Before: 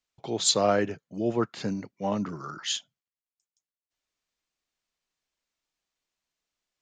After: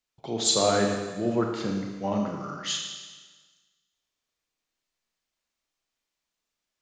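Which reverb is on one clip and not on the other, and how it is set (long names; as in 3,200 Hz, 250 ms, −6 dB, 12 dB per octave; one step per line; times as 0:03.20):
four-comb reverb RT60 1.4 s, combs from 27 ms, DRR 1.5 dB
level −1 dB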